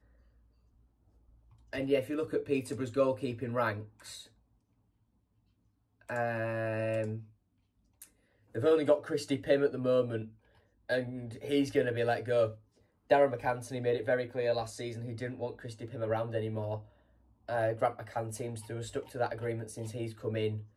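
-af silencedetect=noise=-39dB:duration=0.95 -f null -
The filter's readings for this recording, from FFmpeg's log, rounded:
silence_start: 0.00
silence_end: 1.73 | silence_duration: 1.73
silence_start: 4.21
silence_end: 6.10 | silence_duration: 1.89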